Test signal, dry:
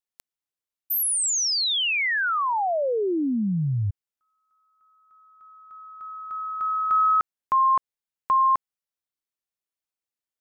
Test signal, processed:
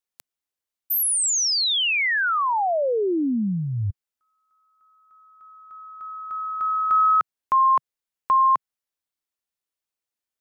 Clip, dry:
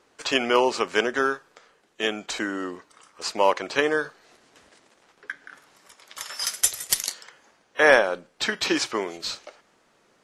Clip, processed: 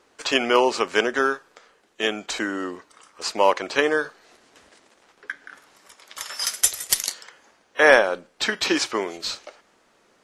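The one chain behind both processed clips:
parametric band 140 Hz −5 dB 0.6 octaves
level +2 dB

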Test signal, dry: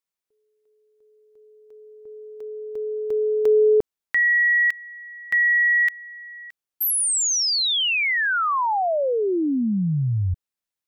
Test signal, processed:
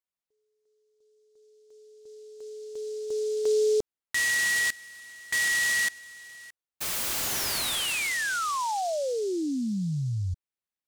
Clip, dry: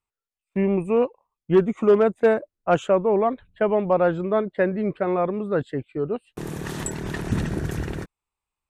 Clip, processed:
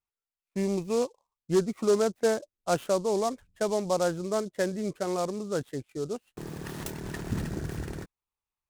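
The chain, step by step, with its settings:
short delay modulated by noise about 5,600 Hz, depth 0.042 ms
level −7 dB

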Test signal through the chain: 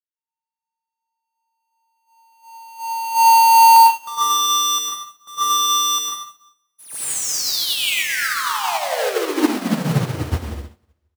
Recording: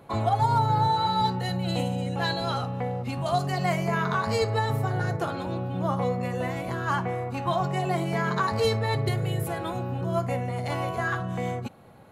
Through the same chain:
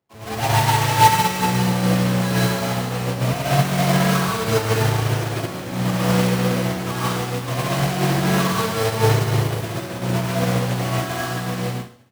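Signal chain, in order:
each half-wave held at its own peak
in parallel at −3 dB: brickwall limiter −22.5 dBFS
on the sum: hard clipping −16.5 dBFS
high-pass filter 50 Hz 24 dB per octave
mains-hum notches 50/100/150/200 Hz
on a send: repeating echo 70 ms, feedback 53%, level −10 dB
on the sum: dense smooth reverb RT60 1.5 s, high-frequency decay 1×, pre-delay 90 ms, DRR −6.5 dB
expander for the loud parts 2.5 to 1, over −30 dBFS
level −1.5 dB

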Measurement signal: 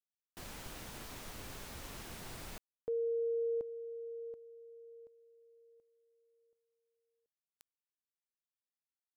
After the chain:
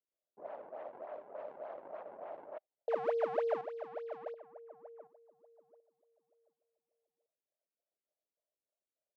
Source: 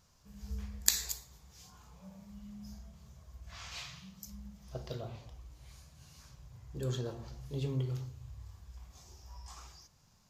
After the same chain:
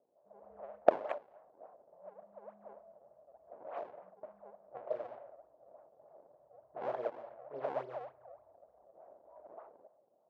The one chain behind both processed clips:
sample-and-hold swept by an LFO 41×, swing 160% 3.4 Hz
four-pole ladder band-pass 660 Hz, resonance 75%
low-pass that shuts in the quiet parts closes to 460 Hz, open at −49.5 dBFS
level +13 dB

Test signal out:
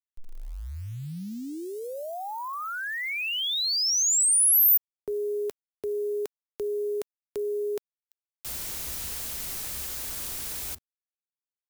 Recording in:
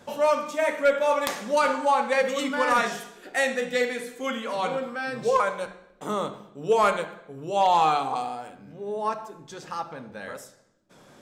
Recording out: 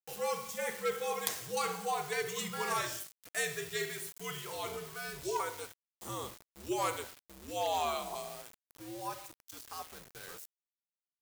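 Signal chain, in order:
frequency shifter −82 Hz
centre clipping without the shift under −38 dBFS
first-order pre-emphasis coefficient 0.8

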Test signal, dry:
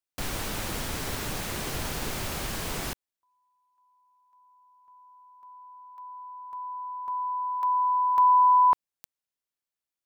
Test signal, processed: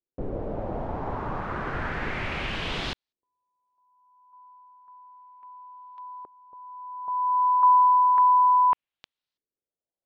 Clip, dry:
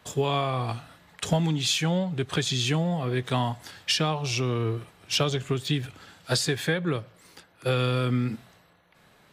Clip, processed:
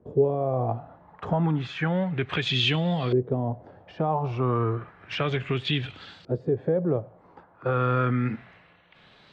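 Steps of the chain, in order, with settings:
high-shelf EQ 11,000 Hz −7.5 dB
brickwall limiter −18.5 dBFS
auto-filter low-pass saw up 0.32 Hz 390–4,400 Hz
level +1.5 dB

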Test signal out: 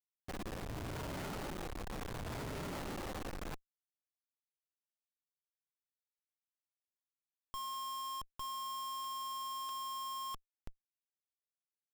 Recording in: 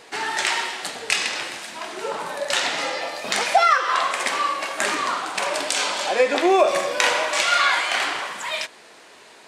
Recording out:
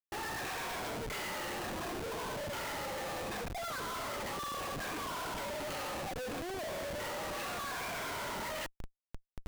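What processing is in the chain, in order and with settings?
rippled gain that drifts along the octave scale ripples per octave 1.7, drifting −0.7 Hz, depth 14 dB
low-pass filter 1,600 Hz 6 dB per octave
reversed playback
downward compressor 20 to 1, threshold −29 dBFS
reversed playback
mains-hum notches 50/100/150/200/250 Hz
comparator with hysteresis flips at −38 dBFS
level −5 dB

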